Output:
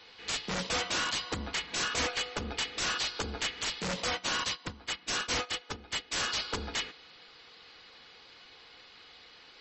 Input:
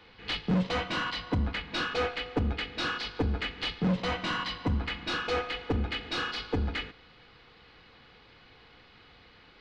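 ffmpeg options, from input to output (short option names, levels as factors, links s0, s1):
-filter_complex "[0:a]bass=f=250:g=-12,treble=f=4000:g=15,aeval=exprs='(mod(16.8*val(0)+1,2)-1)/16.8':c=same,asplit=3[s0][s1][s2];[s0]afade=t=out:st=4.07:d=0.02[s3];[s1]agate=range=0.224:threshold=0.0251:ratio=16:detection=peak,afade=t=in:st=4.07:d=0.02,afade=t=out:st=6.11:d=0.02[s4];[s2]afade=t=in:st=6.11:d=0.02[s5];[s3][s4][s5]amix=inputs=3:normalize=0" -ar 32000 -c:a libmp3lame -b:a 32k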